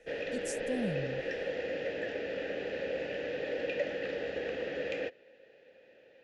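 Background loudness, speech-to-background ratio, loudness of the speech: −36.0 LKFS, −3.5 dB, −39.5 LKFS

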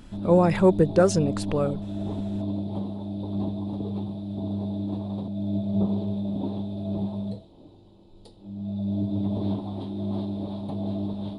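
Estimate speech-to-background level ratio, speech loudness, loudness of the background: 8.5 dB, −22.0 LKFS, −30.5 LKFS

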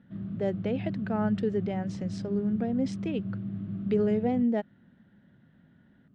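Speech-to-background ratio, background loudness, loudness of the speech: 6.0 dB, −36.0 LKFS, −30.0 LKFS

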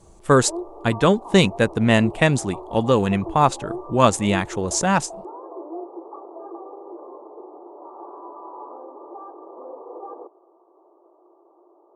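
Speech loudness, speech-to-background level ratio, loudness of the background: −20.0 LKFS, 17.5 dB, −37.5 LKFS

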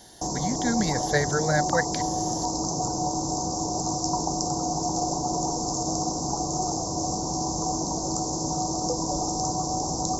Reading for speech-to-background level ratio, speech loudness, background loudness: −0.5 dB, −27.5 LKFS, −27.0 LKFS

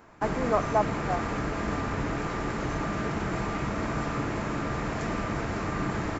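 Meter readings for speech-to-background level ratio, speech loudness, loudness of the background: 1.0 dB, −30.0 LKFS, −31.0 LKFS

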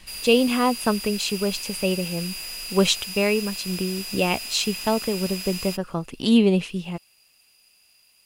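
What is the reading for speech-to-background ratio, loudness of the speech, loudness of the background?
8.0 dB, −23.5 LKFS, −31.5 LKFS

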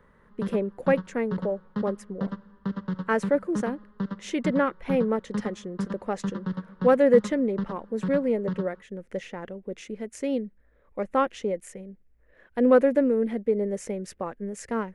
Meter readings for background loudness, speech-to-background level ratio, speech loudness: −34.5 LKFS, 7.5 dB, −27.0 LKFS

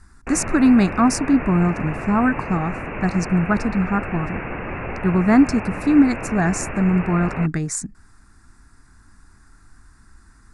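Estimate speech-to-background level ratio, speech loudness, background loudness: 10.0 dB, −19.5 LKFS, −29.5 LKFS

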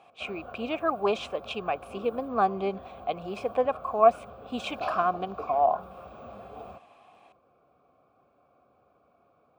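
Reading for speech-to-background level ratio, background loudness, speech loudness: 14.5 dB, −43.0 LKFS, −28.5 LKFS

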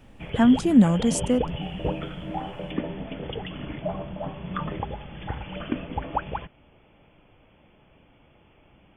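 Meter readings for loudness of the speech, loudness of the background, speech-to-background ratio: −20.5 LKFS, −33.0 LKFS, 12.5 dB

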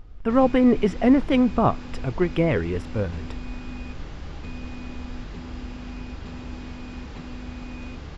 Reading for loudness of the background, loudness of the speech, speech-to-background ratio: −37.5 LKFS, −22.0 LKFS, 15.5 dB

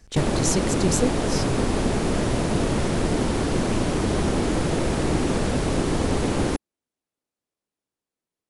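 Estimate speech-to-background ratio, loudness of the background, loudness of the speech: −2.5 dB, −24.0 LKFS, −26.5 LKFS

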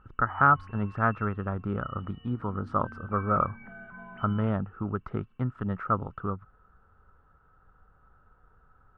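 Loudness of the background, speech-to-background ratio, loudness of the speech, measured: −48.5 LKFS, 19.0 dB, −29.5 LKFS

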